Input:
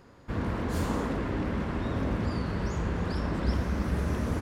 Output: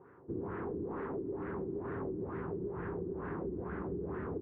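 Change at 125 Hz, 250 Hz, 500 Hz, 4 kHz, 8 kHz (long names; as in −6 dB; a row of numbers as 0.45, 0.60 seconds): −13.5 dB, −8.5 dB, −2.5 dB, below −30 dB, below −30 dB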